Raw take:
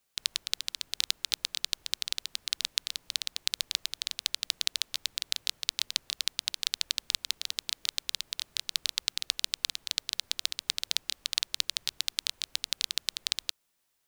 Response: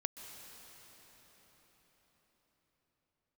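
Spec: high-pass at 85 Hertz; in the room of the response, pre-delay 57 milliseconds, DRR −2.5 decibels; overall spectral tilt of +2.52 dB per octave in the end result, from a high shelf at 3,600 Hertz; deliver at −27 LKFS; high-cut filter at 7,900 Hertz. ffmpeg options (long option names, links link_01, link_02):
-filter_complex "[0:a]highpass=85,lowpass=7900,highshelf=frequency=3600:gain=-8,asplit=2[link_01][link_02];[1:a]atrim=start_sample=2205,adelay=57[link_03];[link_02][link_03]afir=irnorm=-1:irlink=0,volume=3dB[link_04];[link_01][link_04]amix=inputs=2:normalize=0,volume=5dB"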